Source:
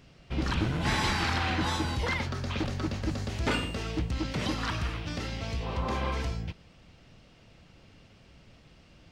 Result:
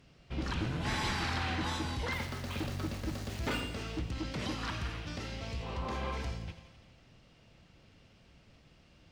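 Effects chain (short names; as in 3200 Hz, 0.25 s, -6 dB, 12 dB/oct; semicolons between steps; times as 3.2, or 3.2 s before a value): added harmonics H 5 -27 dB, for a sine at -15 dBFS; 2.12–3.61 sample gate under -37.5 dBFS; thin delay 85 ms, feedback 68%, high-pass 1800 Hz, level -12.5 dB; reverb RT60 1.6 s, pre-delay 43 ms, DRR 11.5 dB; gain -7 dB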